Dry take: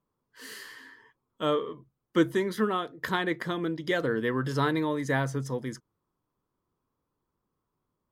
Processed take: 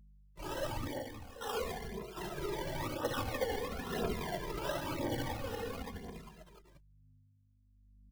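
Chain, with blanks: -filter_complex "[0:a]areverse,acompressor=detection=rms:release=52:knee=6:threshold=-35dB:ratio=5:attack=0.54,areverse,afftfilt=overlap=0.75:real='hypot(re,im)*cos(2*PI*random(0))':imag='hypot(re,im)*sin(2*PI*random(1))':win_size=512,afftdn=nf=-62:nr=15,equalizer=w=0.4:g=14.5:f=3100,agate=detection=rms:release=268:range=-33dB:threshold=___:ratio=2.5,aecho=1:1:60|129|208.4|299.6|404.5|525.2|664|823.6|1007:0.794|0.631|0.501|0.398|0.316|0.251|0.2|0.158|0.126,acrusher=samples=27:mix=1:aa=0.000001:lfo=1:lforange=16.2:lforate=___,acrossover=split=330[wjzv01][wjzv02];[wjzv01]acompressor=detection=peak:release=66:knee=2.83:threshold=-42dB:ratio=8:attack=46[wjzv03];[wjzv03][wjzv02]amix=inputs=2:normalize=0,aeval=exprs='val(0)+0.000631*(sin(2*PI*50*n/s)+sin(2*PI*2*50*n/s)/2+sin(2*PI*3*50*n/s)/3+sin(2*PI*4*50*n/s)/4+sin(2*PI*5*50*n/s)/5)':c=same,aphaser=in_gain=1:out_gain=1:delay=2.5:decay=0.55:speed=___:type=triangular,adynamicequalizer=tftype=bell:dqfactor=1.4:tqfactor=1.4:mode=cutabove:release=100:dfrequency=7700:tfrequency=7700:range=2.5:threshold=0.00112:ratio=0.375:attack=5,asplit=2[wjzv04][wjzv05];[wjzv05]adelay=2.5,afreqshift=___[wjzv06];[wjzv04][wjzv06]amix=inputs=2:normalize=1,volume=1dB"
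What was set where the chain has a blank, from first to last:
-53dB, 1.2, 0.98, -0.47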